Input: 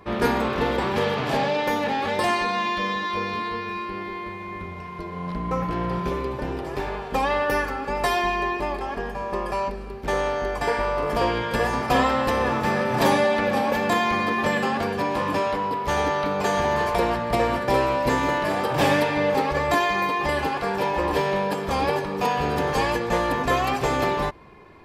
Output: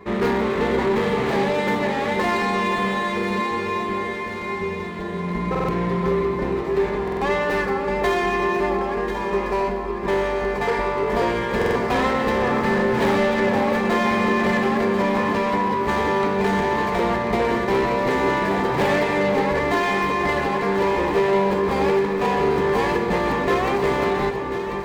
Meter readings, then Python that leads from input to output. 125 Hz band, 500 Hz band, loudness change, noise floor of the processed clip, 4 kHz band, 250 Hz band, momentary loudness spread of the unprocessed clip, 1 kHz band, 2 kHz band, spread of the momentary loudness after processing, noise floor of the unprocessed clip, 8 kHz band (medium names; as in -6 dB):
+2.0 dB, +4.0 dB, +2.5 dB, -27 dBFS, -1.0 dB, +4.5 dB, 9 LU, +1.0 dB, +2.0 dB, 5 LU, -35 dBFS, -2.5 dB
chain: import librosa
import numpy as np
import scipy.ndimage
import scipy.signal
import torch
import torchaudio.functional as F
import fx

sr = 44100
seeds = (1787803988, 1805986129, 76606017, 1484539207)

p1 = scipy.ndimage.median_filter(x, 9, mode='constant')
p2 = fx.graphic_eq_31(p1, sr, hz=(200, 400, 1000, 2000, 4000, 10000), db=(9, 11, 3, 9, 5, -4))
p3 = 10.0 ** (-15.5 / 20.0) * np.tanh(p2 / 10.0 ** (-15.5 / 20.0))
p4 = p3 + fx.echo_alternate(p3, sr, ms=520, hz=1300.0, feedback_pct=76, wet_db=-6.5, dry=0)
y = fx.buffer_glitch(p4, sr, at_s=(5.5, 7.03, 11.57), block=2048, repeats=3)